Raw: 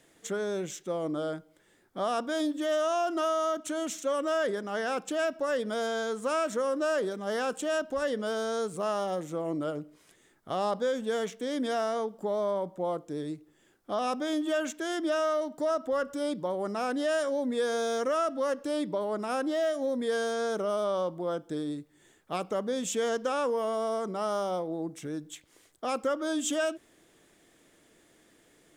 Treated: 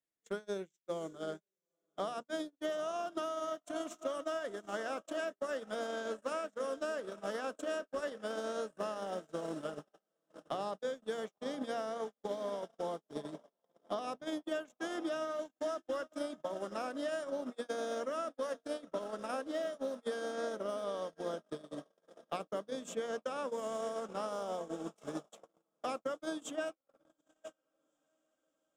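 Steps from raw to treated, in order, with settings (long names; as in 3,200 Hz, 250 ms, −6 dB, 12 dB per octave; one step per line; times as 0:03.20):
on a send: feedback delay with all-pass diffusion 851 ms, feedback 62%, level −11 dB
on the sum: downward compressor 6 to 1, threshold −32 dBFS, peak gain reduction 8 dB
mains-hum notches 60/120/180/240/300/360/420/480 Hz
noise gate −34 dBFS, range −57 dB
multiband upward and downward compressor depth 70%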